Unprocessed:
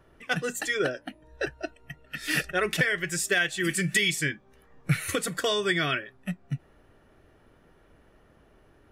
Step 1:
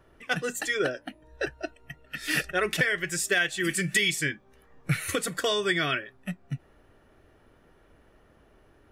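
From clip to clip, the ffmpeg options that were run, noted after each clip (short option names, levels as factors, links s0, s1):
-af "equalizer=f=160:t=o:w=0.75:g=-2.5"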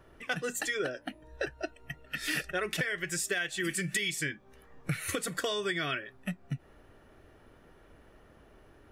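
-af "acompressor=threshold=0.0224:ratio=3,volume=1.19"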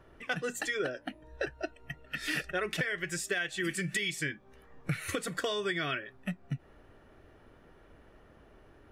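-af "highshelf=f=6600:g=-7.5"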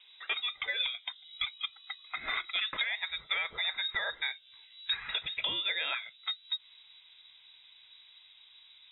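-af "lowpass=f=3300:t=q:w=0.5098,lowpass=f=3300:t=q:w=0.6013,lowpass=f=3300:t=q:w=0.9,lowpass=f=3300:t=q:w=2.563,afreqshift=-3900,asubboost=boost=5:cutoff=130"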